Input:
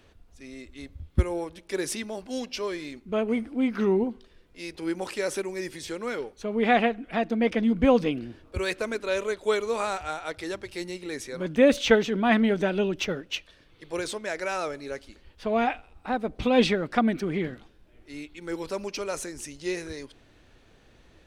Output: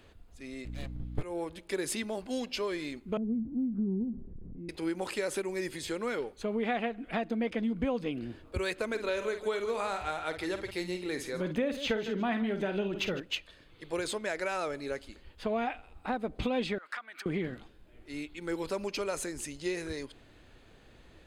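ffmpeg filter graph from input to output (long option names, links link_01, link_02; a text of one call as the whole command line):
ffmpeg -i in.wav -filter_complex "[0:a]asettb=1/sr,asplit=3[link_01][link_02][link_03];[link_01]atrim=end=0.654[link_04];[link_02]atrim=start=0.65:end=1.23,asetpts=PTS-STARTPTS,afade=type=in:duration=0.004:curve=qsin,afade=type=out:start_time=0.576:duration=0.004:curve=qsin,highshelf=frequency=8100:gain=-5.5,aeval=exprs='abs(val(0))':channel_layout=same,aeval=exprs='val(0)+0.0112*(sin(2*PI*60*n/s)+sin(2*PI*2*60*n/s)/2+sin(2*PI*3*60*n/s)/3+sin(2*PI*4*60*n/s)/4+sin(2*PI*5*60*n/s)/5)':channel_layout=same[link_05];[link_03]atrim=start=1.226[link_06];[link_04][link_05]acrossfade=duration=0.004:curve1=hsin:curve2=qsin[link_07];[link_07][link_06]acrossfade=duration=0.004:curve1=qsin:curve2=hsin,asettb=1/sr,asplit=3[link_08][link_09][link_10];[link_08]atrim=end=3.174[link_11];[link_09]atrim=start=3.17:end=4.69,asetpts=PTS-STARTPTS,afade=type=in:duration=0.004:curve=qsin,afade=type=out:start_time=1.516:duration=0.004:curve=qsin,aeval=exprs='val(0)+0.5*0.0133*sgn(val(0))':channel_layout=same,lowpass=frequency=190:width_type=q:width=1.6[link_12];[link_10]atrim=start=4.686[link_13];[link_11][link_12]acrossfade=duration=0.004:curve1=hsin:curve2=qsin[link_14];[link_14][link_13]acrossfade=duration=0.004:curve1=qsin:curve2=hsin,asettb=1/sr,asplit=3[link_15][link_16][link_17];[link_15]atrim=end=8.864[link_18];[link_16]atrim=start=8.86:end=13.2,asetpts=PTS-STARTPTS,afade=type=in:duration=0.004:curve=qsin,afade=type=out:start_time=4.336:duration=0.004:curve=qsin,equalizer=frequency=8000:width=2.5:gain=-4.5,aecho=1:1:50|153:0.316|0.15,atrim=end_sample=191394[link_19];[link_17]atrim=start=13.196[link_20];[link_18][link_19]acrossfade=duration=0.004:curve1=hsin:curve2=qsin[link_21];[link_21][link_20]acrossfade=duration=0.004:curve1=qsin:curve2=hsin,asettb=1/sr,asplit=3[link_22][link_23][link_24];[link_22]atrim=end=16.784[link_25];[link_23]atrim=start=16.78:end=17.26,asetpts=PTS-STARTPTS,afade=type=in:duration=0.004:curve=qsin,afade=type=out:start_time=0.476:duration=0.004:curve=qsin,acompressor=threshold=-34dB:ratio=12:attack=3.2:release=140:knee=1:detection=peak,highpass=frequency=1300:width_type=q:width=1.8[link_26];[link_24]atrim=start=17.256[link_27];[link_25][link_26]acrossfade=duration=0.004:curve1=hsin:curve2=qsin[link_28];[link_28][link_27]acrossfade=duration=0.004:curve1=qsin:curve2=hsin,bandreject=frequency=5700:width=6.4,acompressor=threshold=-29dB:ratio=5" out.wav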